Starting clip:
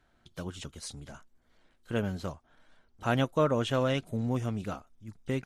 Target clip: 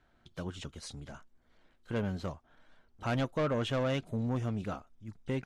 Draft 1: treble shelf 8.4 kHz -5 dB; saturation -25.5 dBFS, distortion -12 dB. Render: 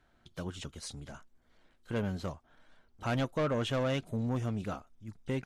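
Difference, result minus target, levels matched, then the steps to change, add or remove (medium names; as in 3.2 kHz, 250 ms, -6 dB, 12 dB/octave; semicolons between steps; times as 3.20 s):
8 kHz band +3.0 dB
change: treble shelf 8.4 kHz -13 dB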